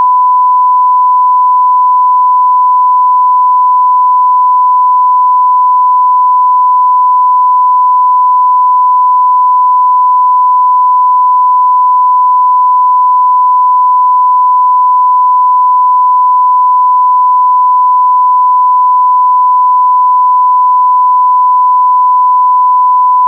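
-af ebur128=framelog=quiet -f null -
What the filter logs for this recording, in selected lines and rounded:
Integrated loudness:
  I:          -6.3 LUFS
  Threshold: -16.3 LUFS
Loudness range:
  LRA:         0.0 LU
  Threshold: -26.3 LUFS
  LRA low:    -6.3 LUFS
  LRA high:   -6.3 LUFS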